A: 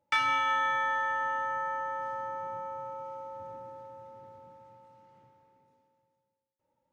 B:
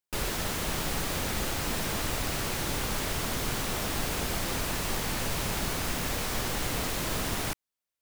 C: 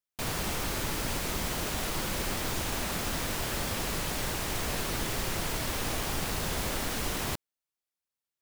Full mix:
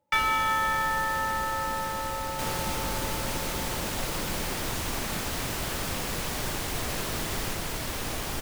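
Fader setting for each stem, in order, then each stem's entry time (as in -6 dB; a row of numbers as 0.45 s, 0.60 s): +2.0 dB, -5.5 dB, -0.5 dB; 0.00 s, 0.00 s, 2.20 s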